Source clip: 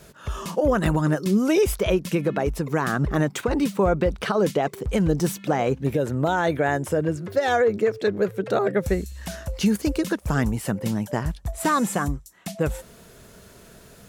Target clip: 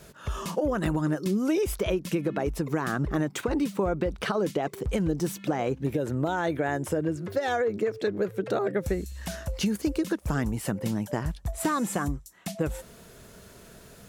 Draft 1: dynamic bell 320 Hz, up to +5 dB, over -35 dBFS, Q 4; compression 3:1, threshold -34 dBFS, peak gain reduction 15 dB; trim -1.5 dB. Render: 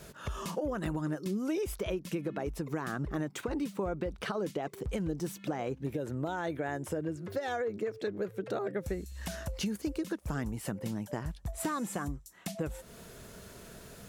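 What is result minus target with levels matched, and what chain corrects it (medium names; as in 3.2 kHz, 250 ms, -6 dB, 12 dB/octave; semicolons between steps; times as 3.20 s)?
compression: peak gain reduction +7.5 dB
dynamic bell 320 Hz, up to +5 dB, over -35 dBFS, Q 4; compression 3:1, threshold -23 dBFS, peak gain reduction 7.5 dB; trim -1.5 dB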